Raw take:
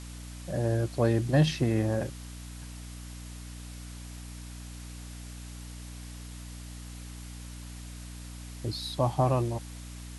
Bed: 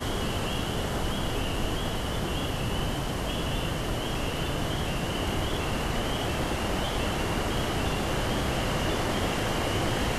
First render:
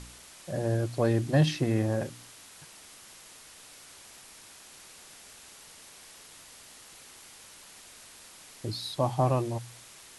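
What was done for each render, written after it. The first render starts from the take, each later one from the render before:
hum removal 60 Hz, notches 5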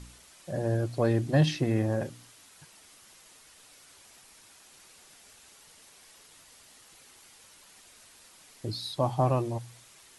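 broadband denoise 6 dB, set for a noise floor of −51 dBFS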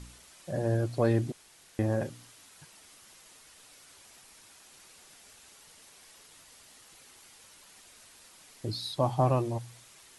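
0:01.32–0:01.79: fill with room tone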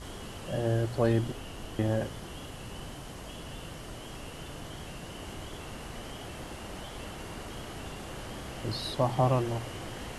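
mix in bed −13 dB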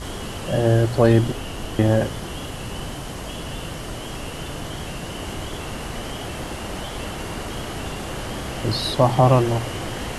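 level +11 dB
brickwall limiter −3 dBFS, peak gain reduction 1.5 dB

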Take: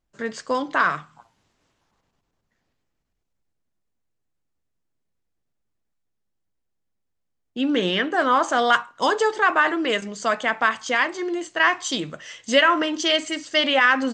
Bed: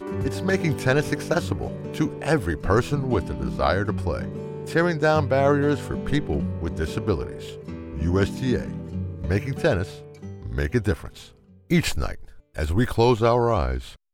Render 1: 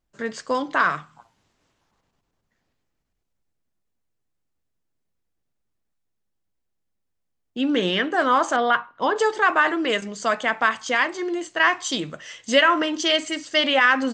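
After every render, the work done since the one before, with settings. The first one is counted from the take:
0:08.56–0:09.16: high-frequency loss of the air 300 metres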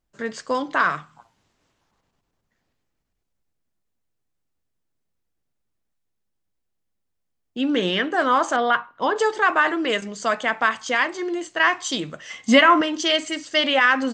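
0:12.30–0:12.81: hollow resonant body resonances 220/770/1,100/2,100 Hz, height 12 dB, ringing for 30 ms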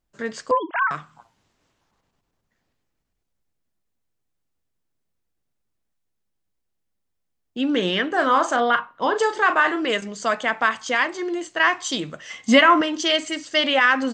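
0:00.51–0:00.91: three sine waves on the formant tracks
0:08.08–0:09.87: double-tracking delay 38 ms −10 dB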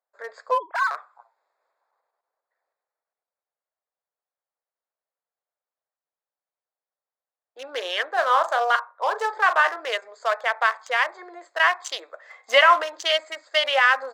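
adaptive Wiener filter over 15 samples
Butterworth high-pass 520 Hz 36 dB per octave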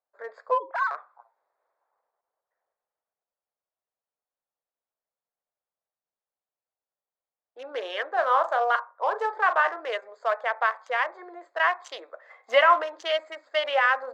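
low-pass filter 1,200 Hz 6 dB per octave
hum removal 267.5 Hz, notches 2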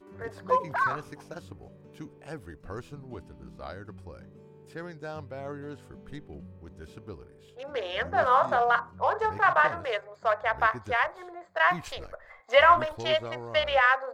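mix in bed −19 dB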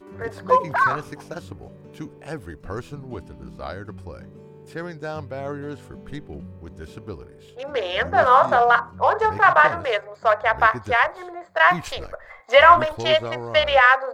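level +7.5 dB
brickwall limiter −2 dBFS, peak gain reduction 2.5 dB

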